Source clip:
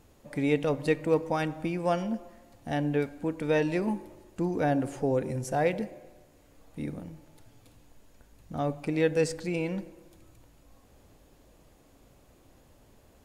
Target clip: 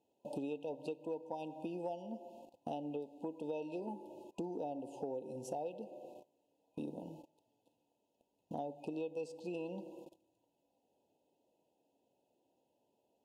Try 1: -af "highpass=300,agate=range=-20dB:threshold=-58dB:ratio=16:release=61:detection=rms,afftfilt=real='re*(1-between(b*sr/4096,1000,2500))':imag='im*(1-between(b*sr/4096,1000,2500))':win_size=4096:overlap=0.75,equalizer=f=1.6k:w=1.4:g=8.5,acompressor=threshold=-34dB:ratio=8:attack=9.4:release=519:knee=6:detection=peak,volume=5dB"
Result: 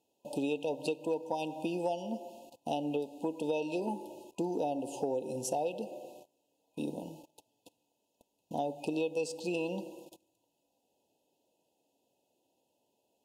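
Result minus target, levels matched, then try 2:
compressor: peak gain reduction -7.5 dB; 4000 Hz band +6.5 dB
-af "highpass=300,highshelf=f=2.5k:g=-11.5,agate=range=-20dB:threshold=-58dB:ratio=16:release=61:detection=rms,afftfilt=real='re*(1-between(b*sr/4096,1000,2500))':imag='im*(1-between(b*sr/4096,1000,2500))':win_size=4096:overlap=0.75,equalizer=f=1.6k:w=1.4:g=8.5,acompressor=threshold=-43dB:ratio=8:attack=9.4:release=519:knee=6:detection=peak,volume=5dB"

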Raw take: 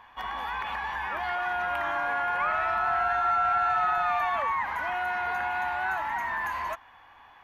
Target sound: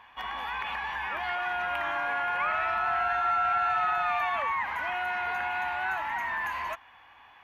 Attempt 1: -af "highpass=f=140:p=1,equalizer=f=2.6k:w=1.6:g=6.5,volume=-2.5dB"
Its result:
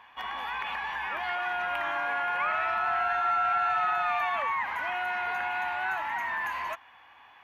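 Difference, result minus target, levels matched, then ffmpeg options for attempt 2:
125 Hz band -4.0 dB
-af "highpass=f=36:p=1,equalizer=f=2.6k:w=1.6:g=6.5,volume=-2.5dB"

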